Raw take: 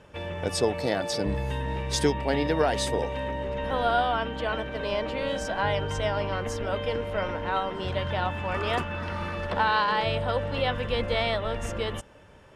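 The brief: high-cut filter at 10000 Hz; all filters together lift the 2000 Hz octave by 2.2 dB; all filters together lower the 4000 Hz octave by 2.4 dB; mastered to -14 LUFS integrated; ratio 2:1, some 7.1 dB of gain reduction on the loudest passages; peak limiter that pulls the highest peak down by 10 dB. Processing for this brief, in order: LPF 10000 Hz; bell 2000 Hz +4 dB; bell 4000 Hz -5 dB; compressor 2:1, threshold -31 dBFS; gain +21.5 dB; limiter -5 dBFS

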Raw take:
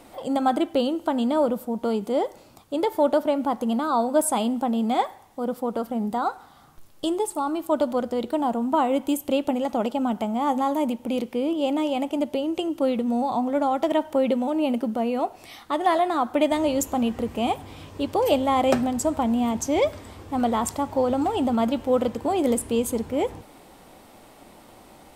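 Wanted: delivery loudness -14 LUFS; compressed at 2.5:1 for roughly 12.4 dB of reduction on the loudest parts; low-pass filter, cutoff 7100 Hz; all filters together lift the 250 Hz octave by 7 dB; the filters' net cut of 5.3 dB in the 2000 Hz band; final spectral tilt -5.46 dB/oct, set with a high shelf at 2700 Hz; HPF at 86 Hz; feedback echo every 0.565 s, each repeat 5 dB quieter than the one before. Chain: HPF 86 Hz; LPF 7100 Hz; bell 250 Hz +8 dB; bell 2000 Hz -5 dB; high shelf 2700 Hz -4.5 dB; compressor 2.5:1, threshold -33 dBFS; feedback echo 0.565 s, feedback 56%, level -5 dB; gain +16 dB

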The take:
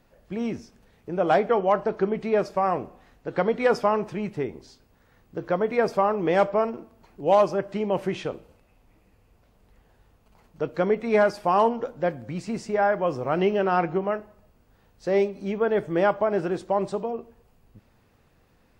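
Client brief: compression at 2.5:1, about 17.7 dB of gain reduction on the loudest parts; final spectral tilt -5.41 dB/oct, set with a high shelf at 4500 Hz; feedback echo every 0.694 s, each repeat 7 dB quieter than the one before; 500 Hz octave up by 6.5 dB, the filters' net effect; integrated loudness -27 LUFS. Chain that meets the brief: bell 500 Hz +8 dB; high shelf 4500 Hz +7 dB; compressor 2.5:1, threshold -37 dBFS; feedback echo 0.694 s, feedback 45%, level -7 dB; gain +7.5 dB

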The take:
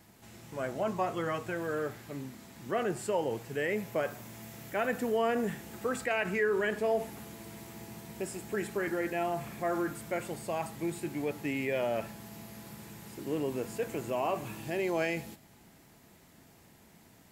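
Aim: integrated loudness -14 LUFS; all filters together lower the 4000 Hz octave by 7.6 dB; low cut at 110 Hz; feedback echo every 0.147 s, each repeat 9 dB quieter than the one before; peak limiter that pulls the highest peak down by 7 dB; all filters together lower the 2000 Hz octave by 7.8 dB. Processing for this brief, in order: HPF 110 Hz; bell 2000 Hz -8.5 dB; bell 4000 Hz -7 dB; limiter -26 dBFS; feedback echo 0.147 s, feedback 35%, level -9 dB; gain +23 dB

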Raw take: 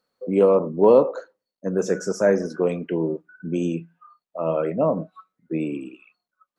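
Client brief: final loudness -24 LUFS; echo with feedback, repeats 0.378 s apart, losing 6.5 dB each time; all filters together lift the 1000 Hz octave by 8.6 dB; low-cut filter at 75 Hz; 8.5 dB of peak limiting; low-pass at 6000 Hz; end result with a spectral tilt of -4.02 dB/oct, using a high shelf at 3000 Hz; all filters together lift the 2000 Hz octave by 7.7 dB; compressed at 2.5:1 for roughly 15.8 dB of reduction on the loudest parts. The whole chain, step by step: HPF 75 Hz; LPF 6000 Hz; bell 1000 Hz +8.5 dB; bell 2000 Hz +5.5 dB; high shelf 3000 Hz +4 dB; compressor 2.5:1, threshold -32 dBFS; limiter -24.5 dBFS; feedback echo 0.378 s, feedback 47%, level -6.5 dB; gain +11 dB

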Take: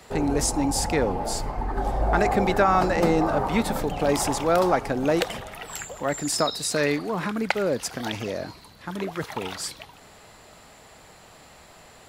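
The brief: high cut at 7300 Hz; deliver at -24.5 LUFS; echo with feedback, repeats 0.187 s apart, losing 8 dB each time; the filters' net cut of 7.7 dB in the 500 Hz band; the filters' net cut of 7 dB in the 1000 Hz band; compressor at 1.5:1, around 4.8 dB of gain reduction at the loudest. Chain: LPF 7300 Hz; bell 500 Hz -8 dB; bell 1000 Hz -6.5 dB; compressor 1.5:1, threshold -34 dBFS; feedback echo 0.187 s, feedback 40%, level -8 dB; gain +7.5 dB

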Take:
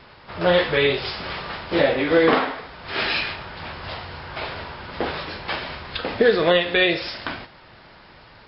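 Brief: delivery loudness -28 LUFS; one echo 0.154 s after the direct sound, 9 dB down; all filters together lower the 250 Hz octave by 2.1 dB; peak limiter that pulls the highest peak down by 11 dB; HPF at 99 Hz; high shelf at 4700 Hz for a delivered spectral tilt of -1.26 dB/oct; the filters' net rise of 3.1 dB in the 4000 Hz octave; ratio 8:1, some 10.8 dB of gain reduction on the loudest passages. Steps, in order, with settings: HPF 99 Hz; bell 250 Hz -3 dB; bell 4000 Hz +6 dB; high shelf 4700 Hz -5 dB; compressor 8:1, threshold -24 dBFS; limiter -22.5 dBFS; echo 0.154 s -9 dB; gain +3.5 dB

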